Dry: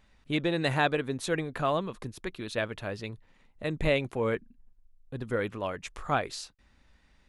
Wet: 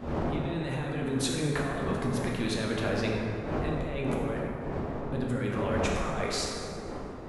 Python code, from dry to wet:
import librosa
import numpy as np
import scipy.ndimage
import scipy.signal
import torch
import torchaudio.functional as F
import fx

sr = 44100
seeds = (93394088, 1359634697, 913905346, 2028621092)

y = fx.dmg_wind(x, sr, seeds[0], corner_hz=490.0, level_db=-42.0)
y = fx.over_compress(y, sr, threshold_db=-35.0, ratio=-1.0)
y = fx.rev_plate(y, sr, seeds[1], rt60_s=2.8, hf_ratio=0.45, predelay_ms=0, drr_db=-3.0)